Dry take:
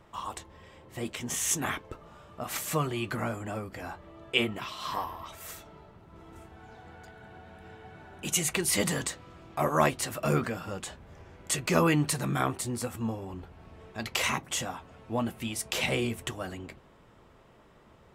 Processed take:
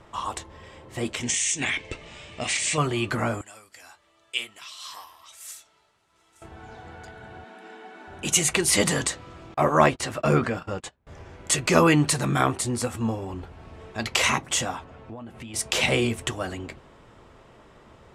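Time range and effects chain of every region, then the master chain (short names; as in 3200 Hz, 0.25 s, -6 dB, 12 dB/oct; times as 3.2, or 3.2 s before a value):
1.23–2.78 brick-wall FIR low-pass 9400 Hz + resonant high shelf 1700 Hz +8.5 dB, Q 3 + compressor 16:1, threshold -28 dBFS
3.41–6.42 LPF 12000 Hz + pre-emphasis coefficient 0.97
7.44–8.08 brick-wall FIR band-pass 190–13000 Hz + bell 540 Hz -9 dB 0.22 oct
9.54–11.07 gate -40 dBFS, range -28 dB + high shelf 5900 Hz -10.5 dB
14.84–15.54 LPF 2300 Hz 6 dB/oct + compressor 16:1, threshold -41 dBFS
whole clip: Chebyshev low-pass 8700 Hz, order 2; bell 180 Hz -3.5 dB 0.41 oct; gain +7.5 dB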